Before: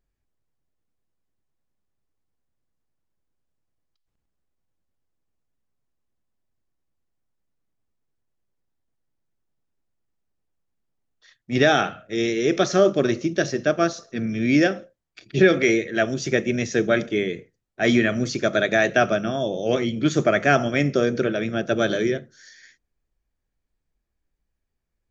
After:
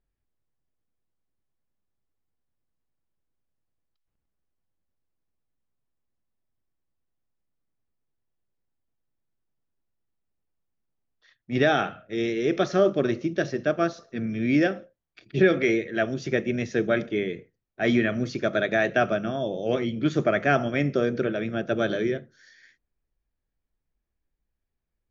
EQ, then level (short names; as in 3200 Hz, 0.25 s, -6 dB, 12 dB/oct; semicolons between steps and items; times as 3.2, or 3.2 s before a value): air absorption 150 m; -3.0 dB